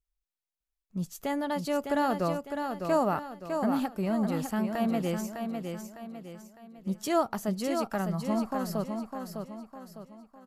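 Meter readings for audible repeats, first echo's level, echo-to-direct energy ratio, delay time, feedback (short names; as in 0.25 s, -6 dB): 4, -6.0 dB, -5.0 dB, 0.605 s, 41%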